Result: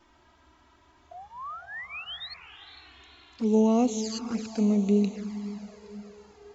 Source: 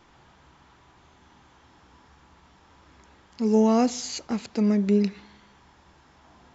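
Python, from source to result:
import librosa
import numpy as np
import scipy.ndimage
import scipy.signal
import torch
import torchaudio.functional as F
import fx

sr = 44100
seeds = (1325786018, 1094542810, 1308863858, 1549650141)

y = fx.spec_paint(x, sr, seeds[0], shape='rise', start_s=1.11, length_s=1.23, low_hz=660.0, high_hz=4400.0, level_db=-35.0)
y = fx.echo_diffused(y, sr, ms=470, feedback_pct=54, wet_db=-11.0)
y = fx.env_flanger(y, sr, rest_ms=3.3, full_db=-21.5)
y = F.gain(torch.from_numpy(y), -1.5).numpy()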